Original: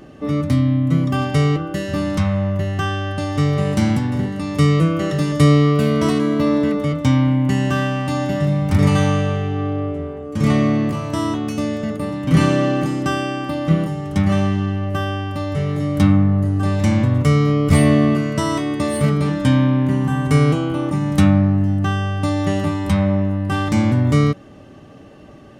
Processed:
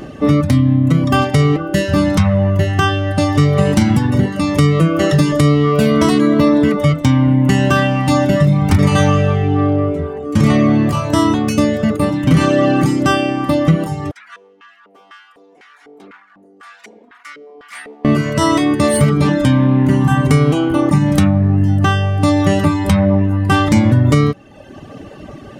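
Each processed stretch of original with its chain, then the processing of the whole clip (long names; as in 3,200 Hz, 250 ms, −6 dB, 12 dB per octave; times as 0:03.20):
0:14.11–0:18.05: lower of the sound and its delayed copy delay 4.2 ms + first difference + auto-filter band-pass square 2 Hz 420–1,500 Hz
whole clip: reverb reduction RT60 0.86 s; downward compressor 6 to 1, threshold −18 dBFS; boost into a limiter +12 dB; level −1 dB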